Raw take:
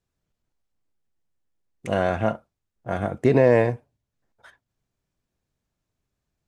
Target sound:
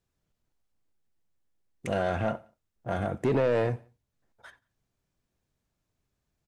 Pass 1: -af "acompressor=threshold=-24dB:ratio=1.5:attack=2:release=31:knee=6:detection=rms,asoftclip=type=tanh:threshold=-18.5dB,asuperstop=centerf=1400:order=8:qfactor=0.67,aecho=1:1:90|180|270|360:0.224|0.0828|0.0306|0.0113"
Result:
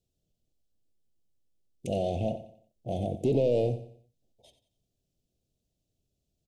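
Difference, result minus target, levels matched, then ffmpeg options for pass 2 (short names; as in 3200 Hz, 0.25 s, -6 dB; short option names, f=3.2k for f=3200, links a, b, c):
echo-to-direct +11 dB; 1000 Hz band -5.0 dB
-af "acompressor=threshold=-24dB:ratio=1.5:attack=2:release=31:knee=6:detection=rms,asoftclip=type=tanh:threshold=-18.5dB,aecho=1:1:90|180:0.0631|0.0233"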